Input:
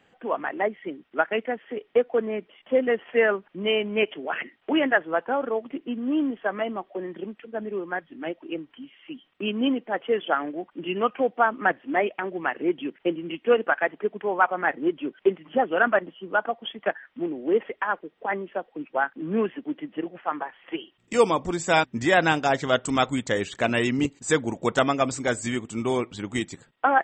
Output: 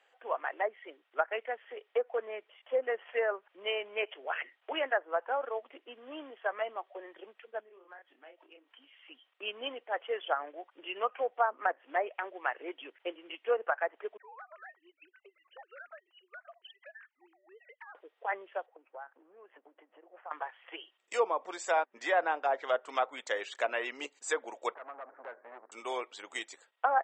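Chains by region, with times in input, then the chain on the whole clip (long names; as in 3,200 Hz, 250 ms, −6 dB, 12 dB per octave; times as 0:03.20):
0:07.60–0:08.68: double-tracking delay 28 ms −5.5 dB + downward compressor 5 to 1, threshold −42 dBFS
0:14.17–0:17.95: three sine waves on the formant tracks + high-pass filter 960 Hz + downward compressor 8 to 1, threshold −40 dBFS
0:18.66–0:20.31: spectral tilt −4 dB per octave + downward compressor 20 to 1, threshold −32 dBFS + resonant band-pass 970 Hz, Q 0.7
0:24.74–0:25.72: Butterworth low-pass 1,700 Hz 48 dB per octave + downward compressor 8 to 1, threshold −29 dBFS + saturating transformer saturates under 860 Hz
whole clip: high-pass filter 510 Hz 24 dB per octave; treble cut that deepens with the level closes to 1,200 Hz, closed at −19.5 dBFS; level −5.5 dB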